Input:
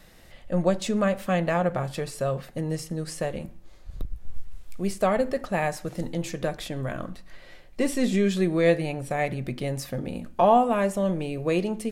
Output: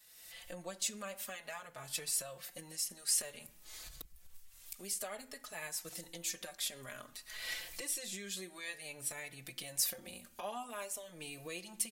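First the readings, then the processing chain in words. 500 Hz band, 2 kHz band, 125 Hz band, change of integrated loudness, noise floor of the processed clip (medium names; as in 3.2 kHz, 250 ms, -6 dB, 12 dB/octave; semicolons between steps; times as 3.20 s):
-23.5 dB, -11.5 dB, -27.0 dB, -13.5 dB, -61 dBFS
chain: recorder AGC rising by 38 dB/s; pre-emphasis filter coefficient 0.97; endless flanger 4.2 ms +0.54 Hz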